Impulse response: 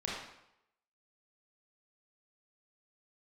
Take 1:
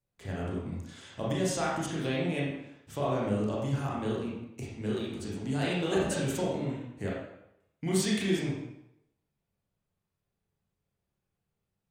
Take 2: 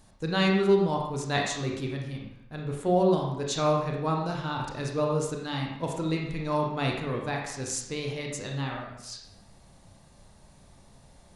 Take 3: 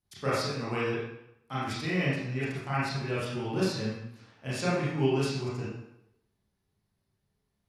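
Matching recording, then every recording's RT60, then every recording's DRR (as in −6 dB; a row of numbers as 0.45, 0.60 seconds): 1; 0.80, 0.80, 0.80 seconds; −5.5, −0.5, −9.5 decibels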